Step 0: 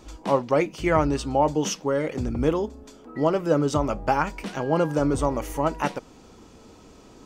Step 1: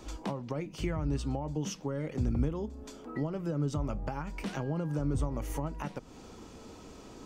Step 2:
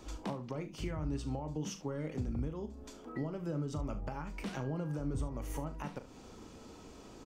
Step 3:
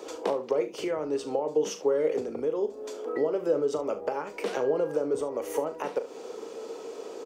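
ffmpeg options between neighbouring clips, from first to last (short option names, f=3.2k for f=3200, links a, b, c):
-filter_complex "[0:a]alimiter=limit=-14.5dB:level=0:latency=1:release=135,acrossover=split=200[a][b];[b]acompressor=threshold=-36dB:ratio=10[c];[a][c]amix=inputs=2:normalize=0"
-filter_complex "[0:a]alimiter=limit=-23.5dB:level=0:latency=1:release=341,asplit=2[a][b];[b]aecho=0:1:39|71:0.282|0.168[c];[a][c]amix=inputs=2:normalize=0,volume=-3.5dB"
-af "highpass=f=450:t=q:w=4.9,volume=7.5dB"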